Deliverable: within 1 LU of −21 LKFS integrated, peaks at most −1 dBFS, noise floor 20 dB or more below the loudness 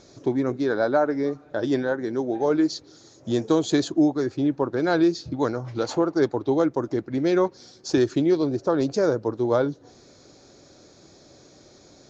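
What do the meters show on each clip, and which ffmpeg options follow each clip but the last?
integrated loudness −24.0 LKFS; sample peak −8.5 dBFS; target loudness −21.0 LKFS
→ -af "volume=3dB"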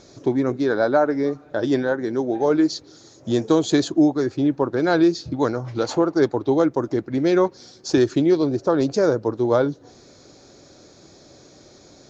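integrated loudness −21.0 LKFS; sample peak −5.5 dBFS; background noise floor −50 dBFS

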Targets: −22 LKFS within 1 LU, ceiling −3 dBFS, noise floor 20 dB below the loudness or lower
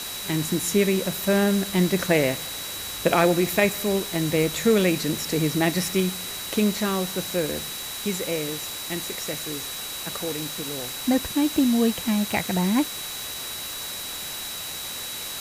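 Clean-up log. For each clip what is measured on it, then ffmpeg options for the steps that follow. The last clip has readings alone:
interfering tone 3,900 Hz; level of the tone −36 dBFS; background noise floor −34 dBFS; target noise floor −45 dBFS; integrated loudness −24.5 LKFS; sample peak −6.5 dBFS; target loudness −22.0 LKFS
→ -af "bandreject=frequency=3900:width=30"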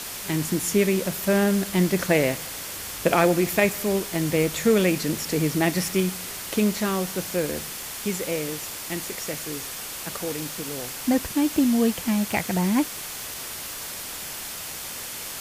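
interfering tone none found; background noise floor −35 dBFS; target noise floor −45 dBFS
→ -af "afftdn=noise_reduction=10:noise_floor=-35"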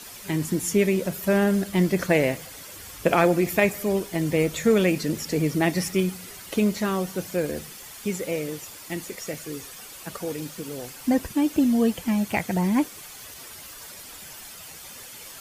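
background noise floor −42 dBFS; target noise floor −45 dBFS
→ -af "afftdn=noise_reduction=6:noise_floor=-42"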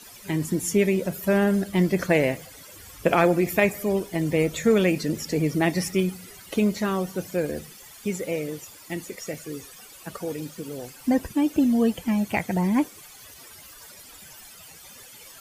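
background noise floor −47 dBFS; integrated loudness −24.5 LKFS; sample peak −6.5 dBFS; target loudness −22.0 LKFS
→ -af "volume=2.5dB"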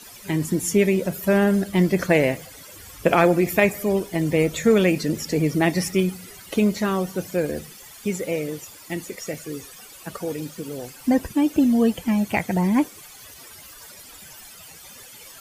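integrated loudness −22.0 LKFS; sample peak −4.0 dBFS; background noise floor −44 dBFS

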